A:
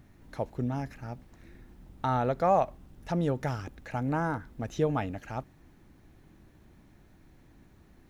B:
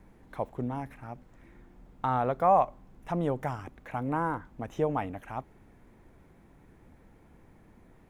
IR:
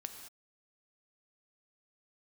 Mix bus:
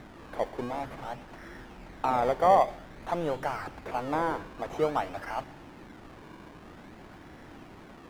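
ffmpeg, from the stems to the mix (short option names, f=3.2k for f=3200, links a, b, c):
-filter_complex "[0:a]acrusher=samples=23:mix=1:aa=0.000001:lfo=1:lforange=23:lforate=0.51,asplit=2[a][b];[b]highpass=f=720:p=1,volume=29dB,asoftclip=type=tanh:threshold=-27dB[c];[a][c]amix=inputs=2:normalize=0,lowpass=f=1.7k:p=1,volume=-6dB,volume=-6dB,asplit=2[d][e];[e]volume=-4dB[f];[1:a]volume=-1,volume=0dB[g];[2:a]atrim=start_sample=2205[h];[f][h]afir=irnorm=-1:irlink=0[i];[d][g][i]amix=inputs=3:normalize=0"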